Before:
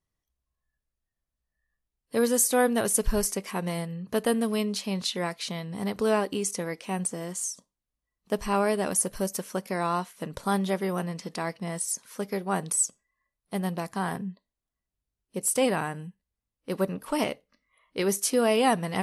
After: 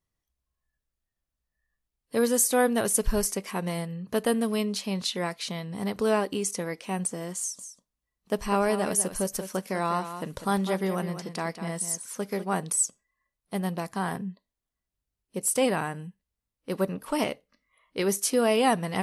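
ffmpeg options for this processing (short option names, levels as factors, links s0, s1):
-filter_complex "[0:a]asettb=1/sr,asplit=3[s0][s1][s2];[s0]atrim=end=7.394[s3];[s1]atrim=start=7.39:end=12.54,asetpts=PTS-STARTPTS,afade=t=in:d=0.004:c=qsin,afade=t=out:st=5.146:d=0.004:c=qsin,aecho=1:1:199:0.299,atrim=end_sample=227115[s4];[s2]atrim=start=12.536[s5];[s3][s4]acrossfade=d=0.004:c1=hsin:c2=qsin[s6];[s6][s5]acrossfade=d=0.004:c1=qsin:c2=hsin"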